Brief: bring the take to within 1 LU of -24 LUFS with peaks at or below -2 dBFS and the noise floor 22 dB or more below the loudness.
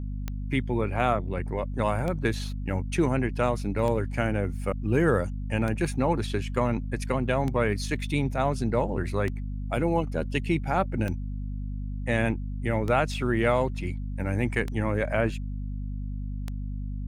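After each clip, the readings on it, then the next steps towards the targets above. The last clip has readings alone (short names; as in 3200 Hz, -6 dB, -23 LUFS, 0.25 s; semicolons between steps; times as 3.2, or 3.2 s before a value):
clicks 10; hum 50 Hz; harmonics up to 250 Hz; hum level -30 dBFS; loudness -28.0 LUFS; peak -9.5 dBFS; loudness target -24.0 LUFS
-> de-click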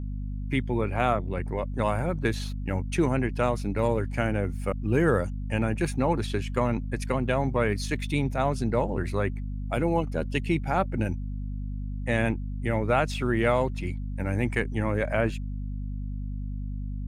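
clicks 0; hum 50 Hz; harmonics up to 250 Hz; hum level -30 dBFS
-> de-hum 50 Hz, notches 5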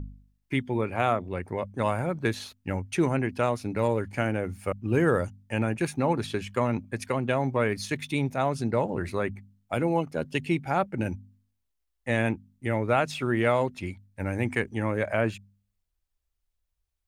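hum none; loudness -28.5 LUFS; peak -10.0 dBFS; loudness target -24.0 LUFS
-> gain +4.5 dB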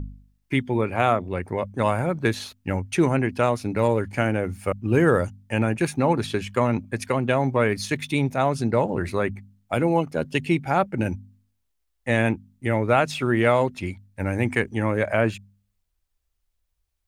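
loudness -24.0 LUFS; peak -5.5 dBFS; noise floor -74 dBFS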